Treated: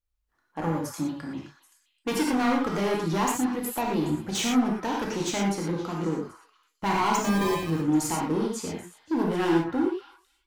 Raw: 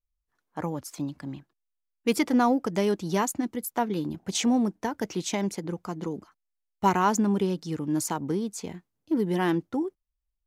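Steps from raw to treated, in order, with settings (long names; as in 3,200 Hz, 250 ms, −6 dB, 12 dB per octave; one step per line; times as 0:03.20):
gain into a clipping stage and back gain 25.5 dB
on a send: echo through a band-pass that steps 261 ms, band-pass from 1,400 Hz, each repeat 1.4 octaves, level −11.5 dB
0:07.24–0:07.70: on the sum: sample-rate reduction 1,400 Hz, jitter 0%
bass and treble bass −3 dB, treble −4 dB
reverb whose tail is shaped and stops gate 140 ms flat, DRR −2 dB
level +1.5 dB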